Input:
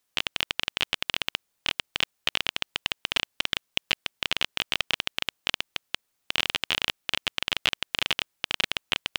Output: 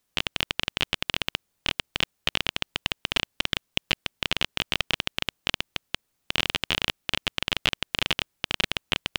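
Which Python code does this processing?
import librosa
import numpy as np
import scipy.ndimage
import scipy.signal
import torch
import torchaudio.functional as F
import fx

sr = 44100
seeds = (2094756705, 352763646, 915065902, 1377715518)

y = fx.low_shelf(x, sr, hz=370.0, db=9.0)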